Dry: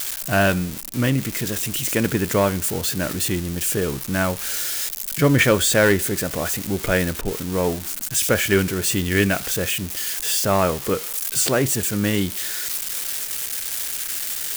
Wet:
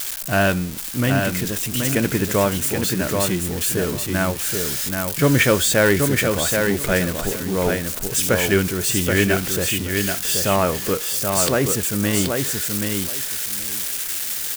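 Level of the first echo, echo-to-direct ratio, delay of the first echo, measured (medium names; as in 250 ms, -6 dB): -4.5 dB, -4.5 dB, 778 ms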